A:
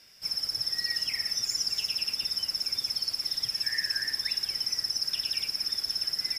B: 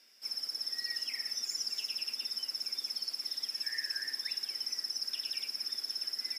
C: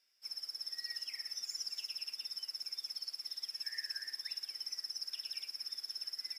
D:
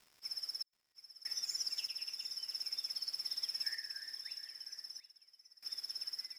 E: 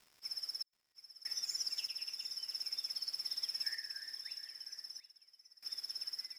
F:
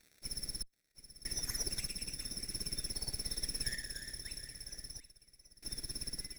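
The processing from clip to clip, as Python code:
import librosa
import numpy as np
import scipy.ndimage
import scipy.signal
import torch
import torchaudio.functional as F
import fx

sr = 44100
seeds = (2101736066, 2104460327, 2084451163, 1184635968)

y1 = scipy.signal.sosfilt(scipy.signal.cheby1(5, 1.0, 220.0, 'highpass', fs=sr, output='sos'), x)
y1 = y1 * librosa.db_to_amplitude(-6.5)
y2 = fx.low_shelf(y1, sr, hz=410.0, db=-11.0)
y2 = fx.upward_expand(y2, sr, threshold_db=-52.0, expansion=1.5)
y2 = y2 * librosa.db_to_amplitude(-4.0)
y3 = fx.dmg_crackle(y2, sr, seeds[0], per_s=300.0, level_db=-54.0)
y3 = fx.tremolo_random(y3, sr, seeds[1], hz=1.6, depth_pct=100)
y3 = y3 + 10.0 ** (-14.0 / 20.0) * np.pad(y3, (int(729 * sr / 1000.0), 0))[:len(y3)]
y3 = y3 * librosa.db_to_amplitude(3.0)
y4 = y3
y5 = fx.lower_of_two(y4, sr, delay_ms=0.49)
y5 = y5 * librosa.db_to_amplitude(3.5)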